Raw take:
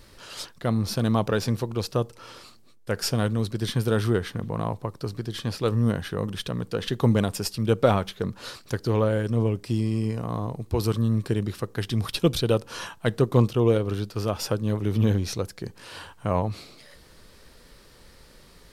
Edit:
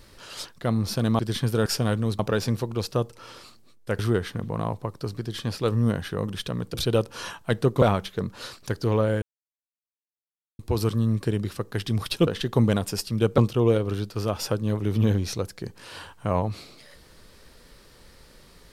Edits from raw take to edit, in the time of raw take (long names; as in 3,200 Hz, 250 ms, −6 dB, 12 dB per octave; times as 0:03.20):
0:01.19–0:02.99: swap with 0:03.52–0:03.99
0:06.74–0:07.85: swap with 0:12.30–0:13.38
0:09.25–0:10.62: silence